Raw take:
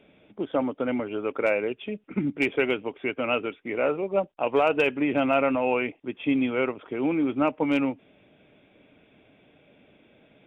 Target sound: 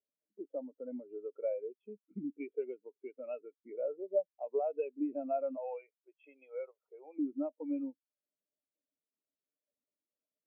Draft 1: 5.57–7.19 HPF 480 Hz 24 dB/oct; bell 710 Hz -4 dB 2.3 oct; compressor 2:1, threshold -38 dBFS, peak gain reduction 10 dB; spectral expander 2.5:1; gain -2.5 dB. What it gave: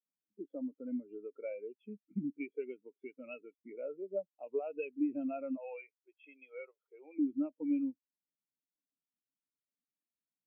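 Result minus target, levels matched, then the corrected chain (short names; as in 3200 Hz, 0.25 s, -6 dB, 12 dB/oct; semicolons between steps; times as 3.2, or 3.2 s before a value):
1000 Hz band -7.0 dB
5.57–7.19 HPF 480 Hz 24 dB/oct; bell 710 Hz +6.5 dB 2.3 oct; compressor 2:1, threshold -38 dBFS, peak gain reduction 14 dB; spectral expander 2.5:1; gain -2.5 dB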